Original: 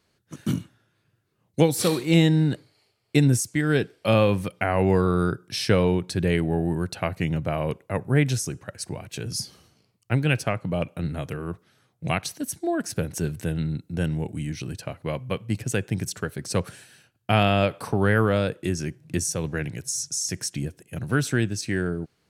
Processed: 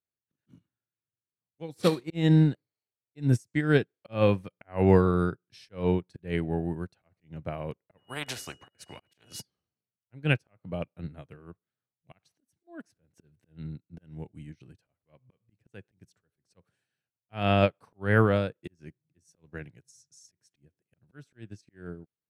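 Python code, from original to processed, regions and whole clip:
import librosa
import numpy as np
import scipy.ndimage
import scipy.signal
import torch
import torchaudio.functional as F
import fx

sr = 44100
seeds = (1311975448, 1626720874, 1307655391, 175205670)

y = fx.dmg_tone(x, sr, hz=2900.0, level_db=-30.0, at=(7.97, 9.4), fade=0.02)
y = fx.spectral_comp(y, sr, ratio=4.0, at=(7.97, 9.4), fade=0.02)
y = fx.high_shelf(y, sr, hz=5800.0, db=-11.0)
y = fx.auto_swell(y, sr, attack_ms=212.0)
y = fx.upward_expand(y, sr, threshold_db=-40.0, expansion=2.5)
y = F.gain(torch.from_numpy(y), 2.0).numpy()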